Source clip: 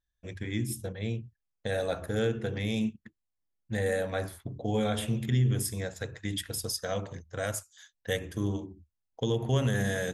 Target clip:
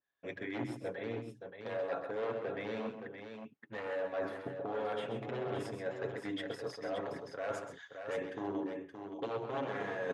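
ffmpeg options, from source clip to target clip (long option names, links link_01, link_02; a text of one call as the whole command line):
ffmpeg -i in.wav -filter_complex "[0:a]aeval=exprs='0.0562*(abs(mod(val(0)/0.0562+3,4)-2)-1)':channel_layout=same,highpass=370,lowpass=2200,areverse,acompressor=threshold=-43dB:ratio=6,areverse,aecho=1:1:7.2:0.41,asplit=2[link_01][link_02];[link_02]aecho=0:1:130|572:0.376|0.422[link_03];[link_01][link_03]amix=inputs=2:normalize=0,adynamicequalizer=threshold=0.001:dfrequency=1500:dqfactor=0.7:tfrequency=1500:tqfactor=0.7:attack=5:release=100:ratio=0.375:range=2.5:mode=cutabove:tftype=highshelf,volume=7dB" out.wav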